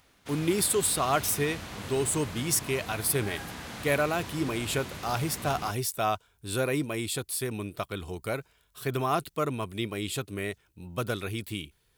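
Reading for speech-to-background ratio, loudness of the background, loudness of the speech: 10.0 dB, −40.0 LKFS, −30.0 LKFS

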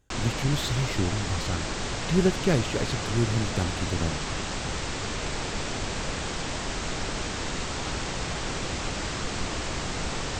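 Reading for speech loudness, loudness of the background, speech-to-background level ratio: −28.5 LKFS, −31.0 LKFS, 2.5 dB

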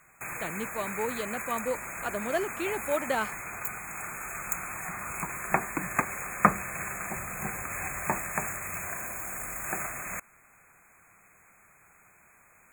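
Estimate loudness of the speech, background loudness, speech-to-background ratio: −33.5 LKFS, −33.0 LKFS, −0.5 dB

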